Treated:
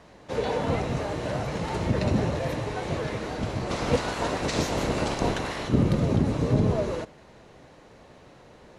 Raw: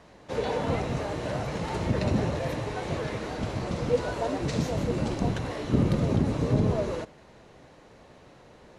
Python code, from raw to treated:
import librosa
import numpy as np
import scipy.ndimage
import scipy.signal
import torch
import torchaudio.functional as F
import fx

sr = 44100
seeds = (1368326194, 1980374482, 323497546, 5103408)

y = fx.spec_clip(x, sr, under_db=14, at=(3.69, 5.67), fade=0.02)
y = y * 10.0 ** (1.5 / 20.0)